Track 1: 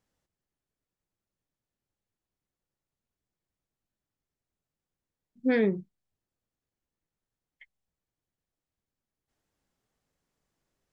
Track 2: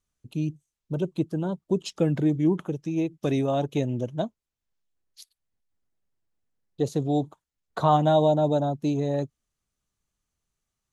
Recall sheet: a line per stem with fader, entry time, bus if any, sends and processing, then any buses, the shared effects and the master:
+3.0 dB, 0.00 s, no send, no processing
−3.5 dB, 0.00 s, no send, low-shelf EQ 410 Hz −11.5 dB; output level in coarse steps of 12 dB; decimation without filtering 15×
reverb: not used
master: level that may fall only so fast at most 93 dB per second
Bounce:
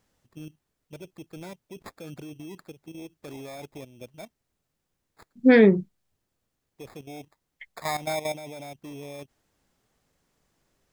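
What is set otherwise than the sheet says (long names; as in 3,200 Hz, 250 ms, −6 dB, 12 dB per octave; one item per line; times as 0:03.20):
stem 1 +3.0 dB → +9.5 dB
master: missing level that may fall only so fast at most 93 dB per second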